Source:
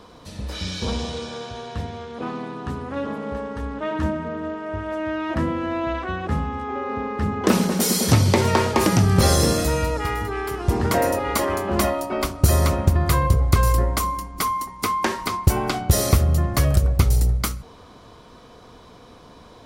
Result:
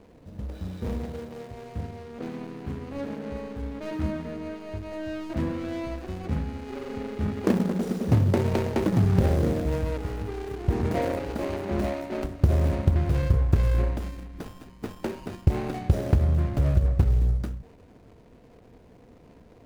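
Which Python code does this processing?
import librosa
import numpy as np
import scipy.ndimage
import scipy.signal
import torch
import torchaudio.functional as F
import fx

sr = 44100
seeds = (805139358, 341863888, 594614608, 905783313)

y = scipy.signal.medfilt(x, 41)
y = y * librosa.db_to_amplitude(-3.5)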